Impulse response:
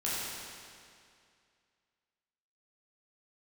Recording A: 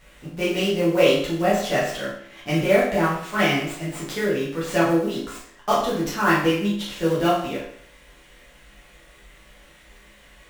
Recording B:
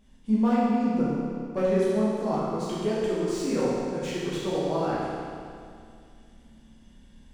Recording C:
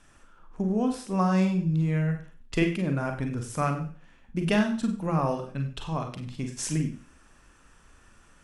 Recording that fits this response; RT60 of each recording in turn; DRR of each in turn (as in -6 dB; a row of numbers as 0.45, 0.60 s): B; 0.60, 2.3, 0.40 s; -8.5, -8.5, 4.0 dB